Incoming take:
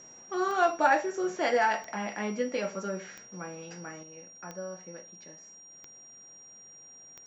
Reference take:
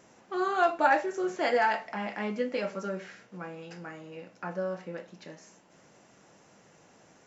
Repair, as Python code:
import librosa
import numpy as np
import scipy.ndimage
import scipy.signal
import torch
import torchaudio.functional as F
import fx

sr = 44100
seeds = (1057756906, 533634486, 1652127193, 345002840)

y = fx.fix_declick_ar(x, sr, threshold=10.0)
y = fx.notch(y, sr, hz=5700.0, q=30.0)
y = fx.gain(y, sr, db=fx.steps((0.0, 0.0), (4.03, 6.5)))